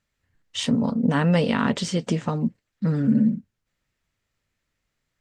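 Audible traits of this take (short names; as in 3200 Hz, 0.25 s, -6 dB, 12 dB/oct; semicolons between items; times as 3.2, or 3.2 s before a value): noise floor -80 dBFS; spectral tilt -6.0 dB/oct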